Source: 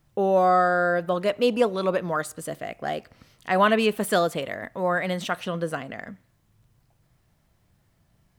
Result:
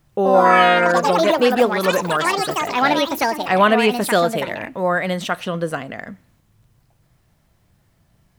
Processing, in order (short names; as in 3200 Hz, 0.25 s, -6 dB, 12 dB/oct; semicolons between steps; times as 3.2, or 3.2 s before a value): echoes that change speed 0.123 s, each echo +5 st, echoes 3; gain +5 dB